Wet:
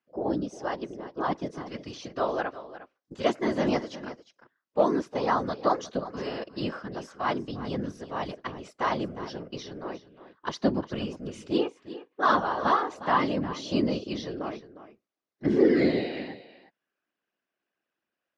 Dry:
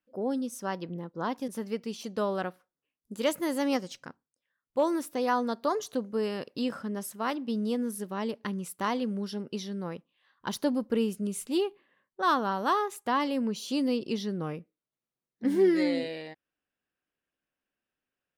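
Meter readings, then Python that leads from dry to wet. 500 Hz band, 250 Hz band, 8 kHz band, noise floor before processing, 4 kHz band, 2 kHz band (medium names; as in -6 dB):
+2.0 dB, +0.5 dB, -7.5 dB, under -85 dBFS, +0.5 dB, +3.0 dB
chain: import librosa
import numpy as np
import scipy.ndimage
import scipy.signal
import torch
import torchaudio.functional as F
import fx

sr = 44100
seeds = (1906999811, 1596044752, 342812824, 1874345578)

p1 = scipy.signal.sosfilt(scipy.signal.cheby1(3, 1.0, [280.0, 5900.0], 'bandpass', fs=sr, output='sos'), x)
p2 = fx.hpss(p1, sr, part='harmonic', gain_db=-10)
p3 = fx.high_shelf(p2, sr, hz=4000.0, db=-7.0)
p4 = fx.hpss(p3, sr, part='harmonic', gain_db=9)
p5 = fx.notch_comb(p4, sr, f0_hz=450.0)
p6 = fx.whisperise(p5, sr, seeds[0])
p7 = p6 + fx.echo_single(p6, sr, ms=356, db=-14.5, dry=0)
y = F.gain(torch.from_numpy(p7), 4.5).numpy()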